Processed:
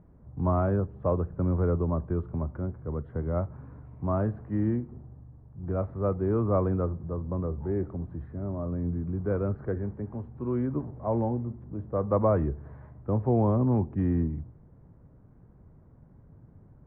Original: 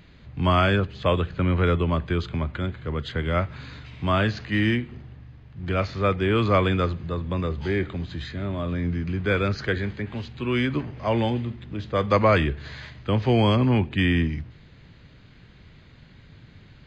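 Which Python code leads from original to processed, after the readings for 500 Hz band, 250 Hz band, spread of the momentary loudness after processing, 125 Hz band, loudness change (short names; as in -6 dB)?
-4.0 dB, -4.0 dB, 13 LU, -4.0 dB, -5.0 dB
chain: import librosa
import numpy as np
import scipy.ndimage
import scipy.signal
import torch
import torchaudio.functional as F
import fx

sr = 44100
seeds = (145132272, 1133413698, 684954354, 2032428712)

y = scipy.signal.sosfilt(scipy.signal.butter(4, 1000.0, 'lowpass', fs=sr, output='sos'), x)
y = F.gain(torch.from_numpy(y), -4.0).numpy()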